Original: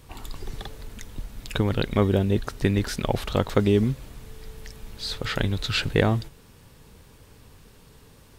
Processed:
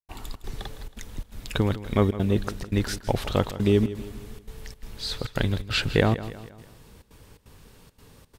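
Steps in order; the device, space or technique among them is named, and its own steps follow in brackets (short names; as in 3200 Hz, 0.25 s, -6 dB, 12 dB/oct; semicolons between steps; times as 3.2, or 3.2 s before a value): trance gate with a delay (step gate ".xxx.xxxxx" 171 bpm -60 dB; feedback echo 0.16 s, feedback 47%, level -14.5 dB)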